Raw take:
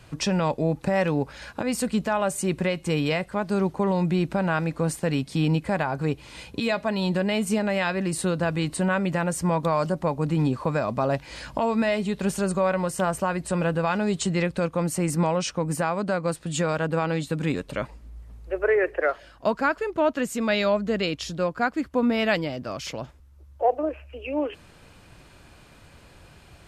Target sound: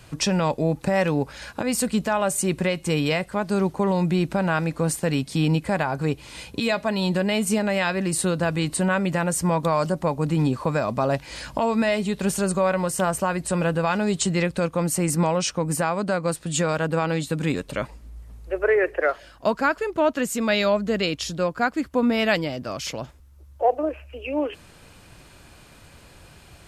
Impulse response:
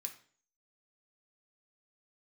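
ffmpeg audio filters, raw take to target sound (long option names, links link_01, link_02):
-af "highshelf=frequency=5600:gain=6.5,volume=1.5dB"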